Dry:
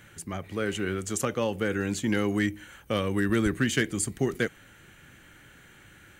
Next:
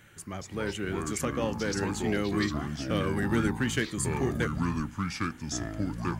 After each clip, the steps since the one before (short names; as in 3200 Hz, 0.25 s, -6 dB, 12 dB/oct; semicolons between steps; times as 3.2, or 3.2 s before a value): echoes that change speed 0.173 s, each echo -5 st, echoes 2; gain -3.5 dB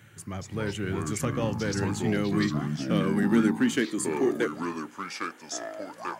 high-pass sweep 110 Hz -> 590 Hz, 1.75–5.74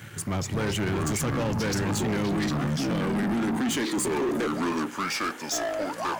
limiter -22.5 dBFS, peak gain reduction 10.5 dB; sample leveller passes 3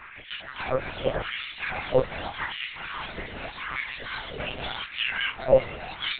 spectrum mirrored in octaves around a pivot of 1900 Hz; LFO high-pass sine 0.84 Hz 400–2300 Hz; monotone LPC vocoder at 8 kHz 130 Hz; gain +2.5 dB